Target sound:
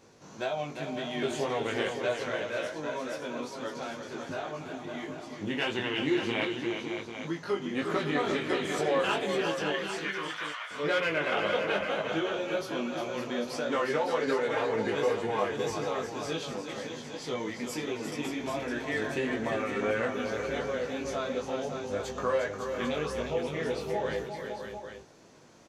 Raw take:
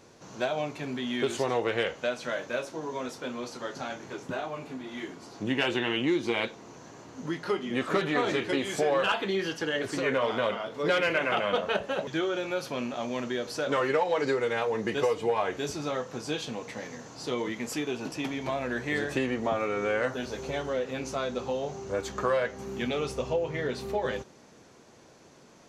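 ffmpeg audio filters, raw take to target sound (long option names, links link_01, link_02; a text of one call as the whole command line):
ffmpeg -i in.wav -filter_complex "[0:a]asettb=1/sr,asplit=3[link_01][link_02][link_03];[link_01]atrim=end=9.724[link_04];[link_02]atrim=start=9.72:end=10.71,asetpts=PTS-STARTPTS,afade=type=in:duration=0.004:curve=qsin,afade=type=out:start_time=0.986:duration=0.004:curve=qsin,highpass=frequency=1100:width=0.5412,highpass=frequency=1100:width=1.3066[link_05];[link_03]atrim=start=10.706[link_06];[link_04][link_05]acrossfade=duration=0.004:curve1=hsin:curve2=qsin[link_07];[link_07][link_06]acrossfade=duration=0.004:curve1=qsin:curve2=hsin,flanger=delay=18:depth=2.5:speed=1.9,aecho=1:1:354|559|797:0.422|0.422|0.335" out.wav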